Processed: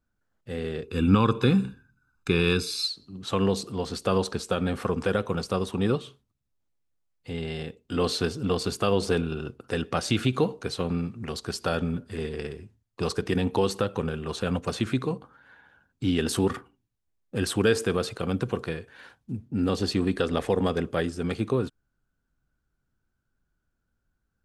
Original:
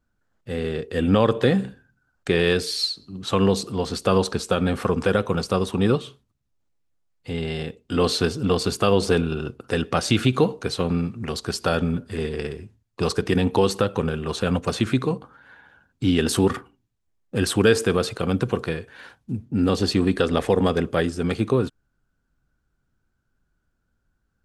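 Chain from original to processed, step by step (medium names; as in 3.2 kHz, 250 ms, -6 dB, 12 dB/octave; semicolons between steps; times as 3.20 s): 0.83–2.88 s: comb 0.8 ms, depth 98%; trim -5 dB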